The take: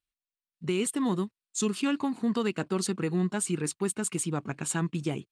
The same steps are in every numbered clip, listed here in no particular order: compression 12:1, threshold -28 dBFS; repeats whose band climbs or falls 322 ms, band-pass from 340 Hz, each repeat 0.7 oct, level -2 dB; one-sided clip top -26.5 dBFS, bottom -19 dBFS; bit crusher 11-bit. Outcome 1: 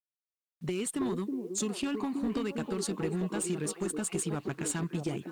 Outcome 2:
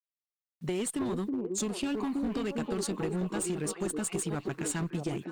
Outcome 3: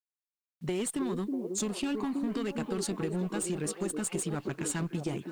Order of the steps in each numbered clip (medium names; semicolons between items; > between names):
compression > repeats whose band climbs or falls > bit crusher > one-sided clip; bit crusher > repeats whose band climbs or falls > one-sided clip > compression; one-sided clip > repeats whose band climbs or falls > compression > bit crusher